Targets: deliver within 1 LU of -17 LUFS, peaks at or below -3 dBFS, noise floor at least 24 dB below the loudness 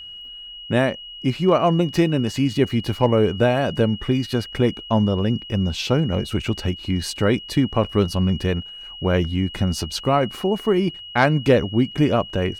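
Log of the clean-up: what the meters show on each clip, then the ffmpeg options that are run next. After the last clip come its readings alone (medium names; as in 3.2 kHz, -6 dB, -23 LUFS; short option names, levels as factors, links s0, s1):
steady tone 2.9 kHz; tone level -35 dBFS; loudness -21.0 LUFS; peak level -3.0 dBFS; loudness target -17.0 LUFS
-> -af "bandreject=f=2900:w=30"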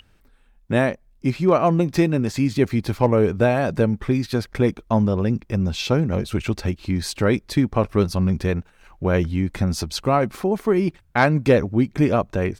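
steady tone not found; loudness -21.0 LUFS; peak level -3.0 dBFS; loudness target -17.0 LUFS
-> -af "volume=1.58,alimiter=limit=0.708:level=0:latency=1"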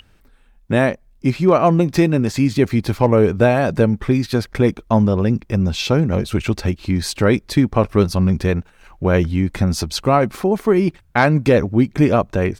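loudness -17.5 LUFS; peak level -3.0 dBFS; noise floor -53 dBFS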